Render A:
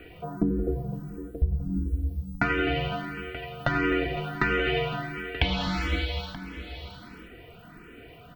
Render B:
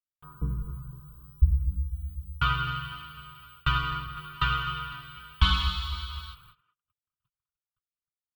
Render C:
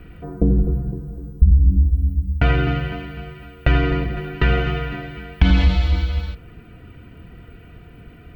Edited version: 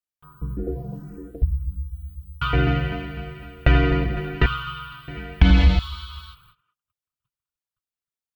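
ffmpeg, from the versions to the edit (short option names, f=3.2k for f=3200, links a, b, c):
-filter_complex "[2:a]asplit=2[a][b];[1:a]asplit=4[c][d][e][f];[c]atrim=end=0.572[g];[0:a]atrim=start=0.568:end=1.432[h];[d]atrim=start=1.428:end=2.532[i];[a]atrim=start=2.528:end=4.462[j];[e]atrim=start=4.458:end=5.082[k];[b]atrim=start=5.078:end=5.792[l];[f]atrim=start=5.788[m];[g][h]acrossfade=d=0.004:c1=hsin:c2=hsin[n];[n][i]acrossfade=d=0.004:c1=hsin:c2=hsin[o];[o][j]acrossfade=d=0.004:c1=hsin:c2=hsin[p];[p][k]acrossfade=d=0.004:c1=hsin:c2=hsin[q];[q][l]acrossfade=d=0.004:c1=hsin:c2=hsin[r];[r][m]acrossfade=d=0.004:c1=hsin:c2=hsin"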